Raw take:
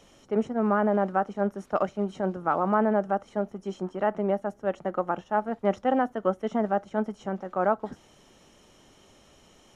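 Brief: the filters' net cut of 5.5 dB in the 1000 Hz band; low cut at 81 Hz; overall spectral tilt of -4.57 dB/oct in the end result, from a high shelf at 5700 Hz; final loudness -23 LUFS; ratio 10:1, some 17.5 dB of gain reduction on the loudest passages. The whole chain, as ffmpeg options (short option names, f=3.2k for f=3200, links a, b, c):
-af "highpass=81,equalizer=f=1k:t=o:g=-7.5,highshelf=f=5.7k:g=-8,acompressor=threshold=-39dB:ratio=10,volume=21.5dB"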